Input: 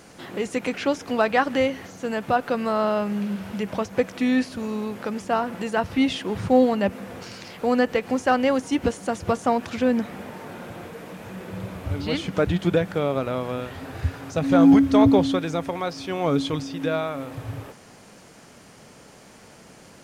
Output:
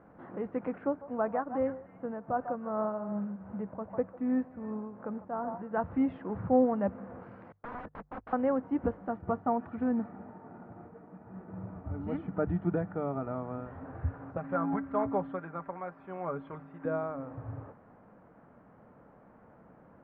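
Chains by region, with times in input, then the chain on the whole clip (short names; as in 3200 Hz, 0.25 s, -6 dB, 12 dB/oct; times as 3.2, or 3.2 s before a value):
0.78–5.71 delay with a stepping band-pass 0.149 s, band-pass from 810 Hz, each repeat 1.4 oct, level -7 dB + tremolo triangle 2.6 Hz, depth 55% + high shelf 2700 Hz -11.5 dB
7.52–8.33 gate -27 dBFS, range -34 dB + wrapped overs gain 24.5 dB
9.08–13.67 notch comb 530 Hz + expander -37 dBFS + mismatched tape noise reduction decoder only
14.37–16.85 LPF 1800 Hz + tilt shelf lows -10 dB, about 1100 Hz + comb 5.1 ms, depth 64%
whole clip: LPF 1400 Hz 24 dB/oct; bell 390 Hz -5.5 dB 0.23 oct; notches 50/100/150 Hz; gain -7 dB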